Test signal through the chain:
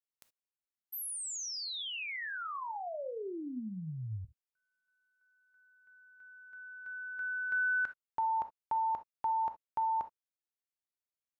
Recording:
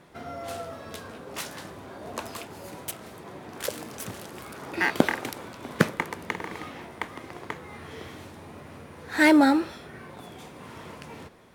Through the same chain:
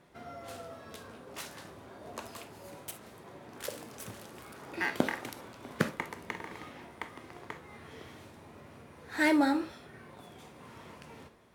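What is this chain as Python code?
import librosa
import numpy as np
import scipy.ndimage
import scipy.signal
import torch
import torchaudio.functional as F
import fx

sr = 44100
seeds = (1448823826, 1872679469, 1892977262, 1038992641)

y = fx.rev_gated(x, sr, seeds[0], gate_ms=90, shape='flat', drr_db=9.5)
y = F.gain(torch.from_numpy(y), -8.0).numpy()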